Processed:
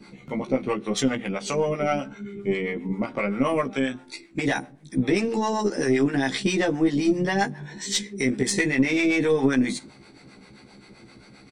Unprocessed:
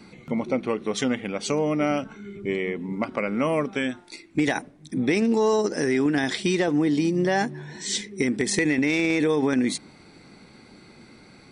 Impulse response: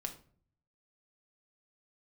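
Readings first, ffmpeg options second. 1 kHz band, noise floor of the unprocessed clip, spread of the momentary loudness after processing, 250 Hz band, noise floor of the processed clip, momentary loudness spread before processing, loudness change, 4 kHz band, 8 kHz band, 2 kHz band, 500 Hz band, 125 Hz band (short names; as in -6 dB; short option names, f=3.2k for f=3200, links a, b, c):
+1.0 dB, -51 dBFS, 8 LU, 0.0 dB, -51 dBFS, 9 LU, 0.0 dB, +0.5 dB, +0.5 dB, +0.5 dB, -0.5 dB, +1.0 dB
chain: -filter_complex "[0:a]asplit=2[a][b];[b]adelay=15,volume=-2.5dB[c];[a][c]amix=inputs=2:normalize=0,asplit=2[d][e];[1:a]atrim=start_sample=2205,asetrate=39249,aresample=44100[f];[e][f]afir=irnorm=-1:irlink=0,volume=-12dB[g];[d][g]amix=inputs=2:normalize=0,acrossover=split=530[h][i];[h]aeval=exprs='val(0)*(1-0.7/2+0.7/2*cos(2*PI*7.6*n/s))':c=same[j];[i]aeval=exprs='val(0)*(1-0.7/2-0.7/2*cos(2*PI*7.6*n/s))':c=same[k];[j][k]amix=inputs=2:normalize=0,aeval=exprs='0.398*(cos(1*acos(clip(val(0)/0.398,-1,1)))-cos(1*PI/2))+0.0178*(cos(4*acos(clip(val(0)/0.398,-1,1)))-cos(4*PI/2))':c=same"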